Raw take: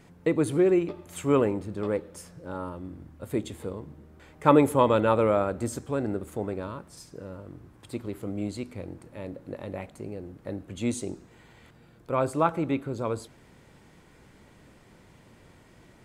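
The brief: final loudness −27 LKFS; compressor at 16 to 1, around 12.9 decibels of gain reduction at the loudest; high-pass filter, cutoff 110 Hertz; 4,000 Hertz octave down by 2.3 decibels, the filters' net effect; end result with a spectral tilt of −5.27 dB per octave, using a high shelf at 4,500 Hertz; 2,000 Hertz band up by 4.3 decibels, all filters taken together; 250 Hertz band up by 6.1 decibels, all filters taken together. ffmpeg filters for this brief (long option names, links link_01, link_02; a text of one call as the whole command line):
ffmpeg -i in.wav -af "highpass=110,equalizer=frequency=250:width_type=o:gain=8,equalizer=frequency=2000:width_type=o:gain=7.5,equalizer=frequency=4000:width_type=o:gain=-3.5,highshelf=frequency=4500:gain=-5,acompressor=threshold=-22dB:ratio=16,volume=4dB" out.wav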